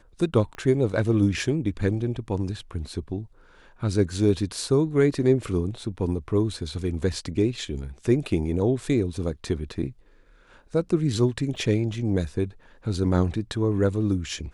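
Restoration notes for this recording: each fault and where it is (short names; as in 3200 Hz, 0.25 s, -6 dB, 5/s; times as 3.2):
0.55 pop -24 dBFS
11.56 gap 4.2 ms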